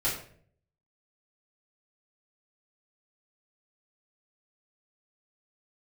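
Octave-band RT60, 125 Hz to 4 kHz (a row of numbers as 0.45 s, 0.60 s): 0.90 s, 0.70 s, 0.65 s, 0.45 s, 0.45 s, 0.40 s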